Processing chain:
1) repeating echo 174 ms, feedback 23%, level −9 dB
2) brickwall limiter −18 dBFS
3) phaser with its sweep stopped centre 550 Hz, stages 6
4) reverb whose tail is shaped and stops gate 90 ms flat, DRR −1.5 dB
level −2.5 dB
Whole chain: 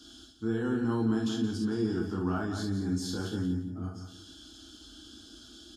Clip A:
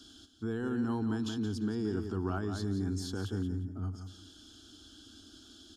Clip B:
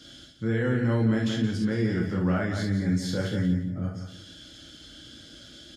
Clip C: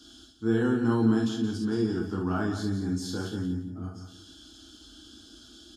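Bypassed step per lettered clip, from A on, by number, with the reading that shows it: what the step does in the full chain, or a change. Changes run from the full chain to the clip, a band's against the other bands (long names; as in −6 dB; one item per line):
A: 4, 125 Hz band +2.5 dB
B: 3, 2 kHz band +5.0 dB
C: 2, change in crest factor +2.5 dB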